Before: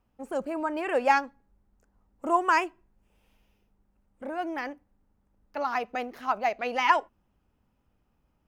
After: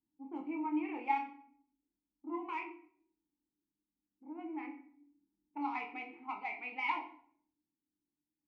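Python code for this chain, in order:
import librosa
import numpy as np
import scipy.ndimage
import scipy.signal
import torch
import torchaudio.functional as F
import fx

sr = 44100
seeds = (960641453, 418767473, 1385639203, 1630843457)

y = fx.tracing_dist(x, sr, depth_ms=0.063)
y = fx.rider(y, sr, range_db=4, speed_s=2.0)
y = fx.env_lowpass(y, sr, base_hz=360.0, full_db=-22.5)
y = fx.vowel_filter(y, sr, vowel='u')
y = fx.peak_eq(y, sr, hz=2400.0, db=8.5, octaves=2.0)
y = fx.room_shoebox(y, sr, seeds[0], volume_m3=86.0, walls='mixed', distance_m=0.53)
y = fx.chorus_voices(y, sr, voices=2, hz=0.43, base_ms=25, depth_ms=2.6, mix_pct=30)
y = fx.high_shelf(y, sr, hz=4200.0, db=fx.steps((0.0, -4.0), (2.62, -9.5), (4.57, 3.5)))
y = y * librosa.db_to_amplitude(-1.5)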